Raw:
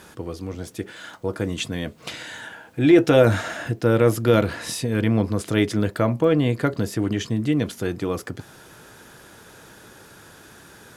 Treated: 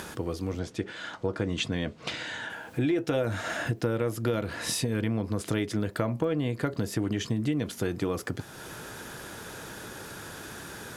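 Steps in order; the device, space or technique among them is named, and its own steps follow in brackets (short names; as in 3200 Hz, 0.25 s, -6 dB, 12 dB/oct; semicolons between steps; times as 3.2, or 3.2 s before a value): 0.59–2.5 LPF 5800 Hz 12 dB/oct; upward and downward compression (upward compressor, threshold -34 dBFS; compressor 8:1, threshold -24 dBFS, peak gain reduction 14.5 dB)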